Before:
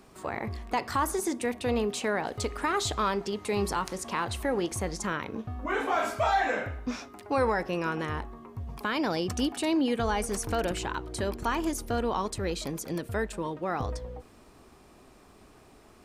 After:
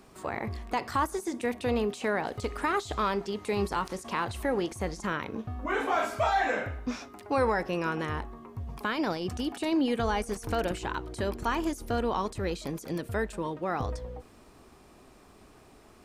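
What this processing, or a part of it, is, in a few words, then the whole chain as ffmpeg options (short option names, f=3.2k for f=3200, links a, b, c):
de-esser from a sidechain: -filter_complex "[0:a]asplit=2[a][b];[b]highpass=f=4.2k:w=0.5412,highpass=f=4.2k:w=1.3066,apad=whole_len=707723[c];[a][c]sidechaincompress=threshold=-43dB:ratio=6:attack=1.5:release=23"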